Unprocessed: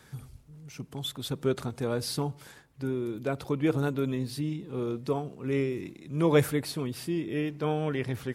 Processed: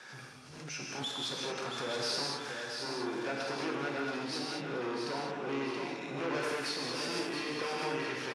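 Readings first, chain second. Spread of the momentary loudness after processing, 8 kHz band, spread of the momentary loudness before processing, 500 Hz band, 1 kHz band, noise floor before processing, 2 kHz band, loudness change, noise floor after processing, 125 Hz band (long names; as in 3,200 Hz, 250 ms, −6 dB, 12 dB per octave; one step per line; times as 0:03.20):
5 LU, 0.0 dB, 11 LU, −6.5 dB, +1.0 dB, −56 dBFS, +3.0 dB, −5.0 dB, −49 dBFS, −15.5 dB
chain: parametric band 3,800 Hz +4 dB 0.27 octaves
downward compressor 2 to 1, threshold −36 dBFS, peak gain reduction 10.5 dB
tube saturation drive 37 dB, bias 0.4
loudspeaker in its box 370–8,300 Hz, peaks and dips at 410 Hz −4 dB, 1,600 Hz +5 dB, 2,600 Hz +4 dB, 3,700 Hz −4 dB, 5,400 Hz +5 dB, 7,800 Hz −7 dB
repeating echo 675 ms, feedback 40%, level −6.5 dB
reverb whose tail is shaped and stops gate 250 ms flat, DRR −2.5 dB
background raised ahead of every attack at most 45 dB per second
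level +5 dB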